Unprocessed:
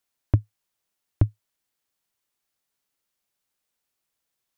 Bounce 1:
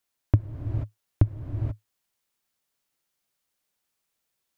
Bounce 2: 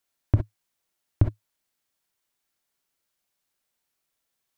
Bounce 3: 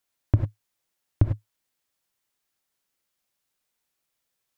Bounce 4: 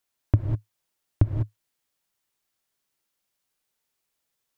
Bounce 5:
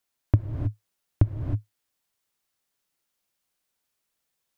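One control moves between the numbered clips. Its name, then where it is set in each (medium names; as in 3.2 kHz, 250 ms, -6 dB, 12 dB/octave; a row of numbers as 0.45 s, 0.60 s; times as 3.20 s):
gated-style reverb, gate: 510 ms, 80 ms, 120 ms, 220 ms, 340 ms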